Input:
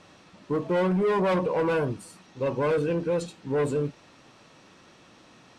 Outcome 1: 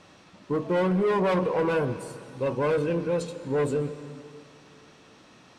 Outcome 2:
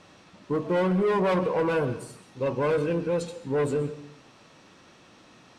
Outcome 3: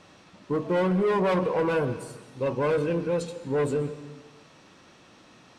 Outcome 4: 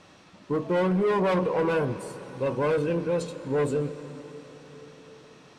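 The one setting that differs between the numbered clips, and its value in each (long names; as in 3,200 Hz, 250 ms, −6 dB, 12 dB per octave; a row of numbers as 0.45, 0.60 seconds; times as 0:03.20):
dense smooth reverb, RT60: 2.5, 0.57, 1.2, 5.3 seconds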